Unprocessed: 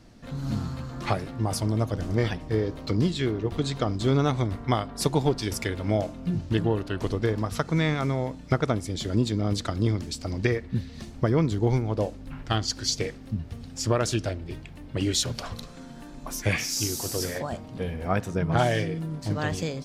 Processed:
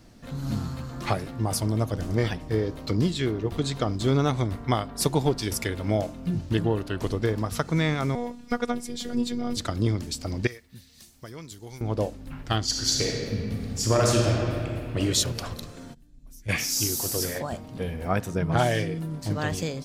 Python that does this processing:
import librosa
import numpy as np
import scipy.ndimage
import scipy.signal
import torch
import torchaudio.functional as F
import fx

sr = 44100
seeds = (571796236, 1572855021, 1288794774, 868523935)

y = fx.robotise(x, sr, hz=241.0, at=(8.15, 9.57))
y = fx.pre_emphasis(y, sr, coefficient=0.9, at=(10.47, 11.81))
y = fx.reverb_throw(y, sr, start_s=12.65, length_s=2.34, rt60_s=2.4, drr_db=-1.5)
y = fx.tone_stack(y, sr, knobs='10-0-1', at=(15.93, 16.48), fade=0.02)
y = fx.high_shelf(y, sr, hz=11000.0, db=11.5)